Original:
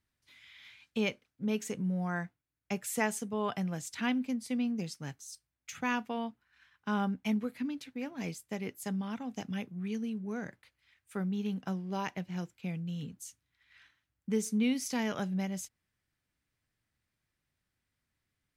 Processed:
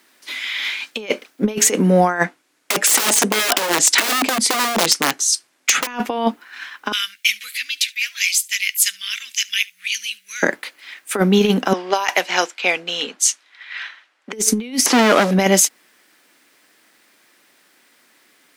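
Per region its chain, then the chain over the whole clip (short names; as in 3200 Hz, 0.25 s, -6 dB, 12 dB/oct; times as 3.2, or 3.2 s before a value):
2.24–5.87 LPF 9800 Hz + wrapped overs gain 32.5 dB
6.92–10.43 inverse Chebyshev high-pass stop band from 900 Hz, stop band 50 dB + echo 71 ms -24 dB
11.73–14.33 HPF 640 Hz + low-pass opened by the level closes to 3000 Hz, open at -37 dBFS + high shelf 5100 Hz +6.5 dB
14.86–15.31 delta modulation 64 kbps, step -47 dBFS + high shelf 3600 Hz -9.5 dB + hard clip -37.5 dBFS
whole clip: HPF 280 Hz 24 dB/oct; negative-ratio compressor -42 dBFS, ratio -0.5; maximiser +28 dB; gain -1 dB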